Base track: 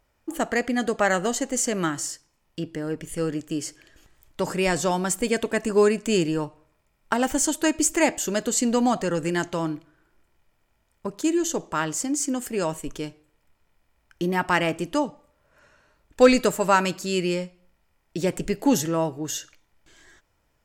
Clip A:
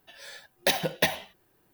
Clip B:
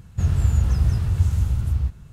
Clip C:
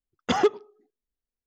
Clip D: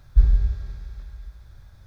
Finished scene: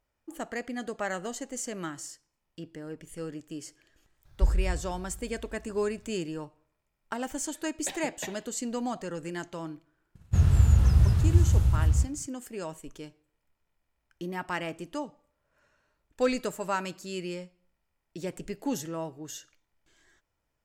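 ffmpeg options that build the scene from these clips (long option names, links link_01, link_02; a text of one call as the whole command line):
ffmpeg -i bed.wav -i cue0.wav -i cue1.wav -i cue2.wav -i cue3.wav -filter_complex "[0:a]volume=-11dB[link_01];[1:a]lowpass=4600[link_02];[2:a]agate=range=-33dB:threshold=-38dB:ratio=3:release=100:detection=peak[link_03];[4:a]atrim=end=1.86,asetpts=PTS-STARTPTS,volume=-8.5dB,afade=type=in:duration=0.004:curve=hsin,afade=type=out:start_time=1.856:duration=0.004:curve=hsin,adelay=187425S[link_04];[link_02]atrim=end=1.73,asetpts=PTS-STARTPTS,volume=-14dB,afade=type=in:duration=0.004:curve=hsin,afade=type=out:start_time=1.726:duration=0.004:curve=hsin,adelay=7200[link_05];[link_03]atrim=end=2.12,asetpts=PTS-STARTPTS,volume=-1dB,afade=type=in:duration=0.004:curve=hsin,afade=type=out:start_time=2.116:duration=0.004:curve=hsin,adelay=10150[link_06];[link_01][link_04][link_05][link_06]amix=inputs=4:normalize=0" out.wav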